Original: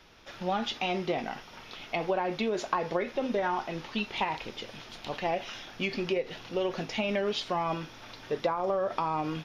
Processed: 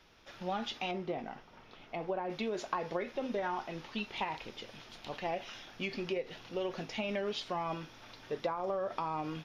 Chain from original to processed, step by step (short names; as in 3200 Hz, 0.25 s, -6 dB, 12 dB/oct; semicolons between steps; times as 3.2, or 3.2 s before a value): 0.91–2.3 high shelf 2100 Hz -11.5 dB; gain -6 dB